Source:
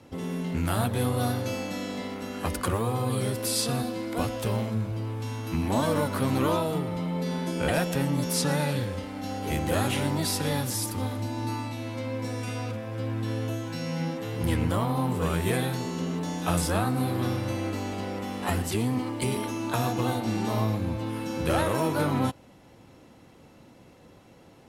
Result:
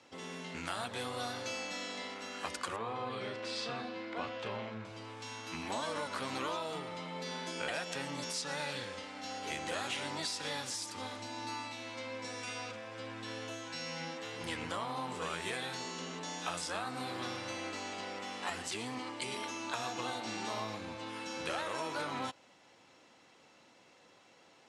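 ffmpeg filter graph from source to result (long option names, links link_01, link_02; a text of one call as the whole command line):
ffmpeg -i in.wav -filter_complex "[0:a]asettb=1/sr,asplit=3[link_01][link_02][link_03];[link_01]atrim=end=2.764[link_04];[link_02]atrim=start=2.76:end=4.85,asetpts=PTS-STARTPTS,afade=type=in:duration=0.004:curve=qsin,afade=type=out:start_time=2.086:duration=0.004:curve=qsin,lowpass=2800,asplit=2[link_05][link_06];[link_06]adelay=36,volume=-11dB[link_07];[link_05][link_07]amix=inputs=2:normalize=0,atrim=end_sample=92169[link_08];[link_03]atrim=start=4.846[link_09];[link_04][link_08]acrossfade=duration=0.004:curve1=hsin:curve2=qsin[link_10];[link_10][link_09]acrossfade=duration=0.004:curve1=qsin:curve2=hsin,highpass=frequency=1400:poles=1,acompressor=threshold=-33dB:ratio=6,lowpass=frequency=7800:width=0.5412,lowpass=frequency=7800:width=1.3066" out.wav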